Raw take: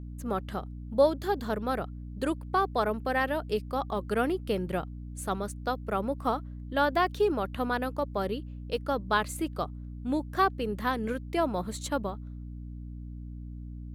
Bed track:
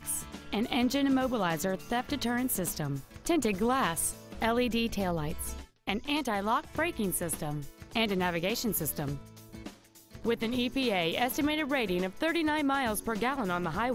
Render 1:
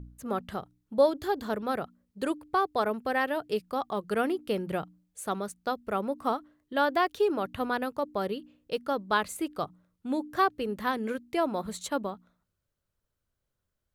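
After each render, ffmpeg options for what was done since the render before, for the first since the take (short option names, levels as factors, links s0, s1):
-af "bandreject=f=60:t=h:w=4,bandreject=f=120:t=h:w=4,bandreject=f=180:t=h:w=4,bandreject=f=240:t=h:w=4,bandreject=f=300:t=h:w=4"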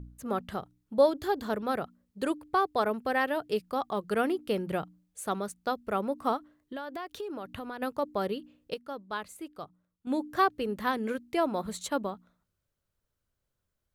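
-filter_complex "[0:a]asplit=3[s0][s1][s2];[s0]afade=t=out:st=6.37:d=0.02[s3];[s1]acompressor=threshold=0.0178:ratio=6:attack=3.2:release=140:knee=1:detection=peak,afade=t=in:st=6.37:d=0.02,afade=t=out:st=7.81:d=0.02[s4];[s2]afade=t=in:st=7.81:d=0.02[s5];[s3][s4][s5]amix=inputs=3:normalize=0,asplit=3[s6][s7][s8];[s6]atrim=end=8.742[s9];[s7]atrim=start=8.738:end=10.072,asetpts=PTS-STARTPTS,volume=0.335[s10];[s8]atrim=start=10.068[s11];[s9][s10]acrossfade=d=0.004:c1=hsin:c2=hsin[s12];[s12][s11]acrossfade=d=0.004:c1=hsin:c2=hsin"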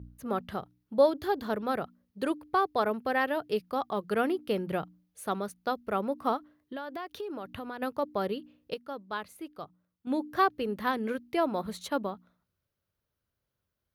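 -af "highpass=54,equalizer=f=7700:w=2.7:g=-11.5"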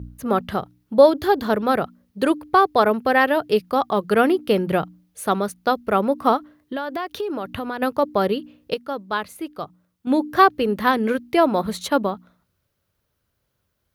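-af "volume=3.55,alimiter=limit=0.794:level=0:latency=1"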